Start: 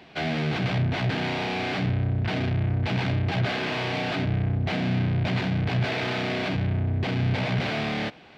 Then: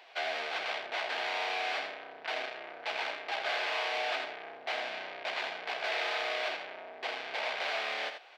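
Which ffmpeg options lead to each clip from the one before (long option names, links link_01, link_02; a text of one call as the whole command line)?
ffmpeg -i in.wav -af "highpass=frequency=550:width=0.5412,highpass=frequency=550:width=1.3066,aecho=1:1:82:0.398,volume=-3.5dB" out.wav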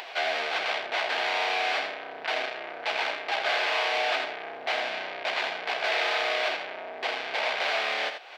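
ffmpeg -i in.wav -af "acompressor=mode=upward:threshold=-39dB:ratio=2.5,volume=6.5dB" out.wav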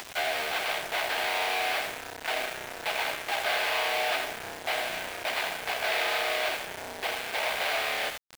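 ffmpeg -i in.wav -af "acrusher=bits=5:mix=0:aa=0.000001,volume=-1.5dB" out.wav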